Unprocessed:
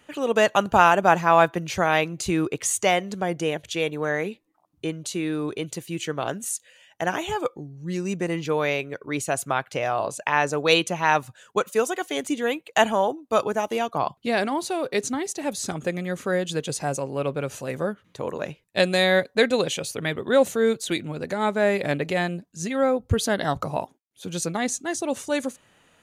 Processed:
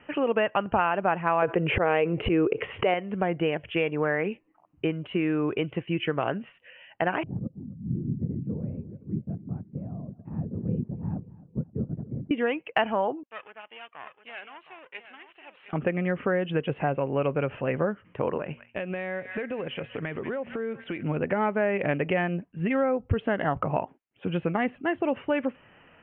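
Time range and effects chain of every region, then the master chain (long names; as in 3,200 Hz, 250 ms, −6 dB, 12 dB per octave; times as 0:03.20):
0:01.42–0:02.94: parametric band 450 Hz +13 dB 0.61 octaves + volume swells 134 ms + envelope flattener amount 50%
0:07.23–0:12.31: linear-prediction vocoder at 8 kHz whisper + flat-topped band-pass 160 Hz, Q 1.4 + repeating echo 264 ms, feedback 44%, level −19 dB
0:13.23–0:15.73: gain on one half-wave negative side −12 dB + resonant band-pass 4,500 Hz, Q 2.1 + single-tap delay 713 ms −11 dB
0:18.38–0:21.03: hum removal 118.3 Hz, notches 2 + delay with a high-pass on its return 186 ms, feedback 62%, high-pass 1,500 Hz, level −17.5 dB + downward compressor 12 to 1, threshold −32 dBFS
whole clip: Butterworth low-pass 3,000 Hz 96 dB per octave; downward compressor 4 to 1, threshold −27 dBFS; level +4.5 dB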